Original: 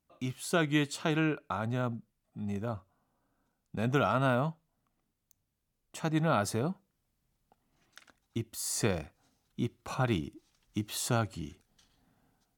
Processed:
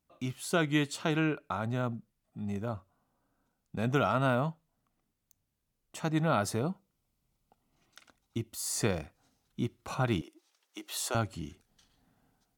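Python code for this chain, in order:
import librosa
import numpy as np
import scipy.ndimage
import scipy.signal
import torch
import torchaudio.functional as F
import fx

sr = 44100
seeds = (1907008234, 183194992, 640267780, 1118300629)

y = fx.notch(x, sr, hz=1700.0, q=5.6, at=(6.59, 8.67))
y = fx.highpass(y, sr, hz=390.0, slope=24, at=(10.21, 11.15))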